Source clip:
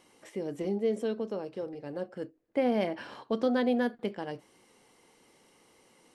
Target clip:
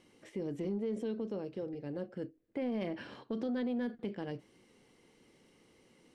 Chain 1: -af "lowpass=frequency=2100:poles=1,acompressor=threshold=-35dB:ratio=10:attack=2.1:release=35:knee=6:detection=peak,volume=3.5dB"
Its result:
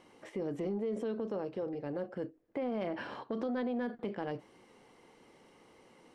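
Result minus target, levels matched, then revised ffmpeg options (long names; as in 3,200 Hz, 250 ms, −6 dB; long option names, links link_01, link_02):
1,000 Hz band +6.0 dB
-af "lowpass=frequency=2100:poles=1,equalizer=frequency=900:width=0.74:gain=-11,acompressor=threshold=-35dB:ratio=10:attack=2.1:release=35:knee=6:detection=peak,volume=3.5dB"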